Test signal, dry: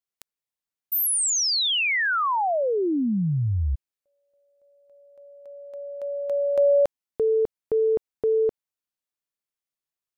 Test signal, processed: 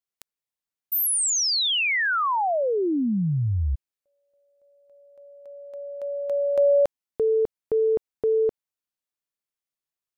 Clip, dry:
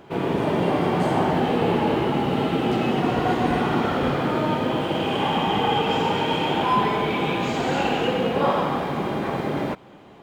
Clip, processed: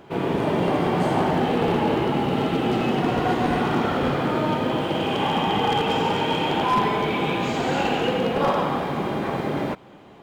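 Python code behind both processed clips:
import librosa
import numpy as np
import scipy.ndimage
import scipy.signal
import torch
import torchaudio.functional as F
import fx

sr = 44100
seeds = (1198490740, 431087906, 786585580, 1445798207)

y = np.minimum(x, 2.0 * 10.0 ** (-14.0 / 20.0) - x)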